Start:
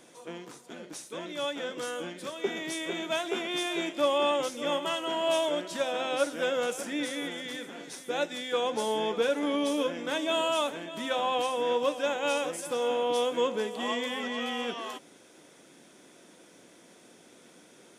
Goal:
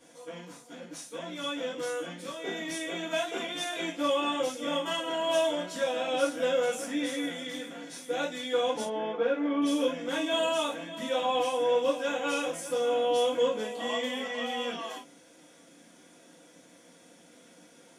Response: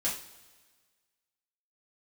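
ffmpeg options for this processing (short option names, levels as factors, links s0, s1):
-filter_complex "[0:a]asettb=1/sr,asplit=3[s0][s1][s2];[s0]atrim=end=8.834[s3];[s1]atrim=start=8.83:end=9.62,asetpts=PTS-STARTPTS,afade=t=in:d=0.004:c=qsin,afade=t=out:st=0.786:d=0.004:c=qsin,highpass=210,lowpass=2100[s4];[s2]atrim=start=9.616[s5];[s3][s4]acrossfade=d=0.004:c1=hsin:c2=qsin[s6];[s6][s5]acrossfade=d=0.004:c1=qsin:c2=hsin[s7];[1:a]atrim=start_sample=2205,atrim=end_sample=3087[s8];[s7][s8]afir=irnorm=-1:irlink=0,volume=0.501"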